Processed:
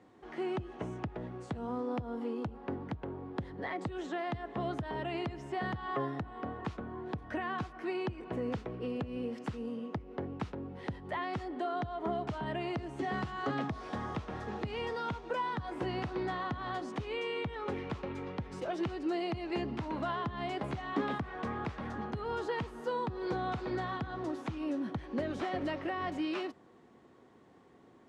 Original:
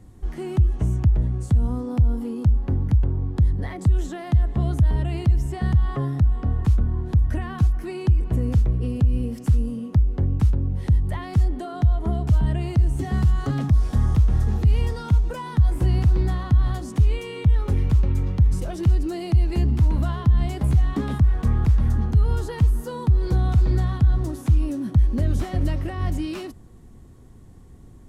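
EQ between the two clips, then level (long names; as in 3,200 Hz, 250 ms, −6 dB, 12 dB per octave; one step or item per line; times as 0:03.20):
band-pass filter 400–3,200 Hz
0.0 dB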